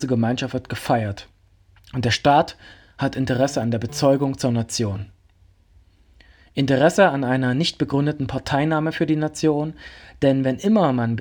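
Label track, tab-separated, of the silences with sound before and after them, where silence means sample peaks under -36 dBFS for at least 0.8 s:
5.050000	6.210000	silence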